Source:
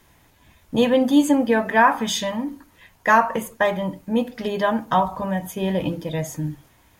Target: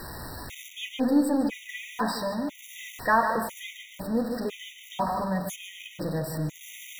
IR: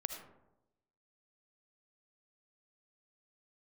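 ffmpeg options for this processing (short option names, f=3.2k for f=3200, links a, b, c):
-filter_complex "[0:a]aeval=exprs='val(0)+0.5*0.0531*sgn(val(0))':c=same,asplit=2[a][b];[1:a]atrim=start_sample=2205,highshelf=f=7.1k:g=-11.5,adelay=149[c];[b][c]afir=irnorm=-1:irlink=0,volume=-6dB[d];[a][d]amix=inputs=2:normalize=0,afftfilt=real='re*gt(sin(2*PI*1*pts/sr)*(1-2*mod(floor(b*sr/1024/1900),2)),0)':imag='im*gt(sin(2*PI*1*pts/sr)*(1-2*mod(floor(b*sr/1024/1900),2)),0)':win_size=1024:overlap=0.75,volume=-7dB"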